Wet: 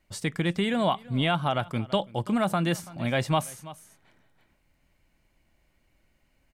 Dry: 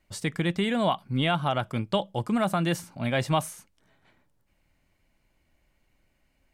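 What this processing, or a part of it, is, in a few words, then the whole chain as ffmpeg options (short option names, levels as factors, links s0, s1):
ducked delay: -filter_complex "[0:a]asplit=3[s0][s1][s2];[s1]adelay=332,volume=0.596[s3];[s2]apad=whole_len=302778[s4];[s3][s4]sidechaincompress=threshold=0.01:ratio=10:attack=6.4:release=497[s5];[s0][s5]amix=inputs=2:normalize=0"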